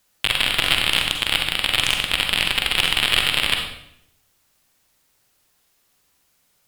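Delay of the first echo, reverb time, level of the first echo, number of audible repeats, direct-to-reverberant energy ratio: no echo audible, 0.75 s, no echo audible, no echo audible, 2.5 dB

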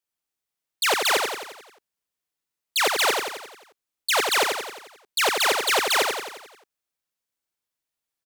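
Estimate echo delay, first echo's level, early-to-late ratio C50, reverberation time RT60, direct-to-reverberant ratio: 88 ms, −4.5 dB, no reverb audible, no reverb audible, no reverb audible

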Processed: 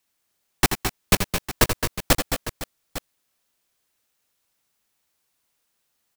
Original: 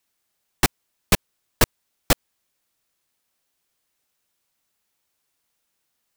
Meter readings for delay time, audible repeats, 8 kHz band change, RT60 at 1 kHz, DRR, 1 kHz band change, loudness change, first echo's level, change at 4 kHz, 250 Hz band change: 82 ms, 4, +1.5 dB, no reverb audible, no reverb audible, +1.5 dB, +0.5 dB, −9.0 dB, +1.5 dB, +1.5 dB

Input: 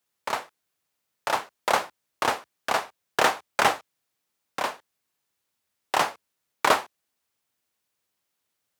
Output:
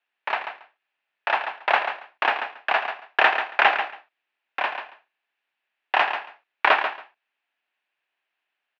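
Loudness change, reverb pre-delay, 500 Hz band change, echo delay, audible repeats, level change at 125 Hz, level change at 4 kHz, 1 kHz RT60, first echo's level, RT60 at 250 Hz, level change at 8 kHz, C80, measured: +3.5 dB, no reverb audible, 0.0 dB, 139 ms, 2, below −15 dB, +1.0 dB, no reverb audible, −8.5 dB, no reverb audible, below −20 dB, no reverb audible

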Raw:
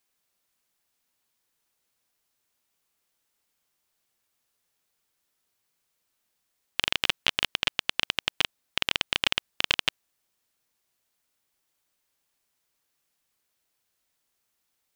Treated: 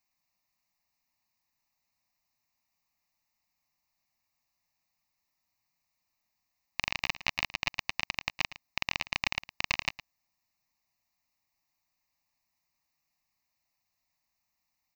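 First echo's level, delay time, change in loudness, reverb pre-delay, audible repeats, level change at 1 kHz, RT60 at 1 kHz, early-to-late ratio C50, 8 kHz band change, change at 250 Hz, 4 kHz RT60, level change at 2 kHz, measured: −16.0 dB, 111 ms, −6.0 dB, no reverb audible, 1, −2.0 dB, no reverb audible, no reverb audible, −5.0 dB, −4.5 dB, no reverb audible, −3.0 dB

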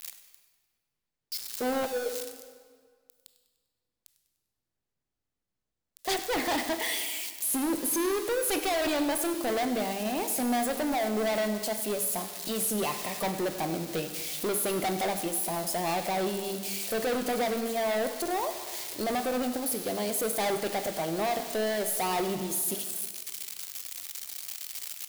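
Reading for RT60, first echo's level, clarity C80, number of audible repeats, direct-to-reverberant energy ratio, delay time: 1.8 s, −16.5 dB, 9.5 dB, 2, 7.5 dB, 99 ms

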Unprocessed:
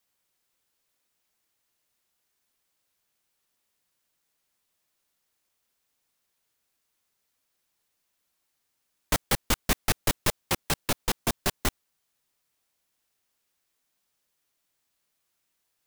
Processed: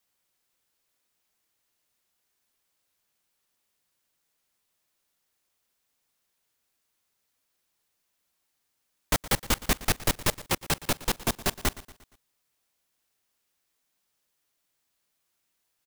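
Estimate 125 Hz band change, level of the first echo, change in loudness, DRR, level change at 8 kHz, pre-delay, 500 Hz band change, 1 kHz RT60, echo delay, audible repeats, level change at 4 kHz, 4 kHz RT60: 0.0 dB, −18.0 dB, 0.0 dB, no reverb audible, 0.0 dB, no reverb audible, 0.0 dB, no reverb audible, 117 ms, 3, 0.0 dB, no reverb audible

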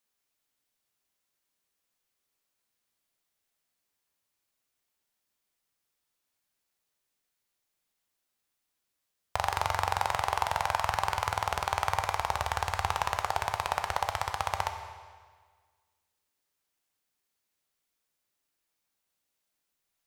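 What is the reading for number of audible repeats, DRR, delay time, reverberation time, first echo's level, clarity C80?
no echo audible, 5.5 dB, no echo audible, 1.6 s, no echo audible, 9.0 dB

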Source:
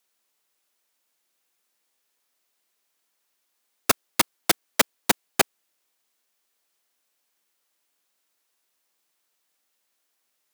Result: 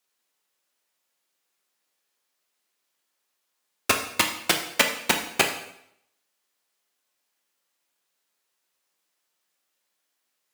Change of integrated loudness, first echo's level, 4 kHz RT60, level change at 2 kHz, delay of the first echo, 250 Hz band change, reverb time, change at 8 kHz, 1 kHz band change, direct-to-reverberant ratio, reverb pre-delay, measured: 0.0 dB, no echo audible, 0.70 s, +2.5 dB, no echo audible, −1.0 dB, 0.75 s, −2.0 dB, −0.5 dB, 2.5 dB, 5 ms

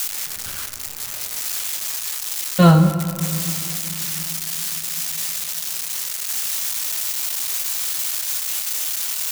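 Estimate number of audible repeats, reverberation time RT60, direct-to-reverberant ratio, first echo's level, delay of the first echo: no echo audible, 2.9 s, 7.0 dB, no echo audible, no echo audible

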